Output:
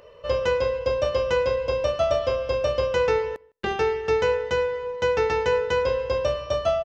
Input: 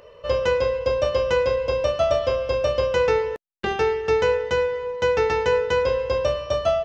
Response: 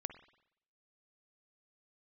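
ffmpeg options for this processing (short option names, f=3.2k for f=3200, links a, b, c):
-filter_complex "[0:a]asplit=2[a][b];[b]adelay=157.4,volume=-29dB,highshelf=f=4k:g=-3.54[c];[a][c]amix=inputs=2:normalize=0,asplit=2[d][e];[1:a]atrim=start_sample=2205,afade=t=out:st=0.21:d=0.01,atrim=end_sample=9702[f];[e][f]afir=irnorm=-1:irlink=0,volume=-10dB[g];[d][g]amix=inputs=2:normalize=0,volume=-3.5dB"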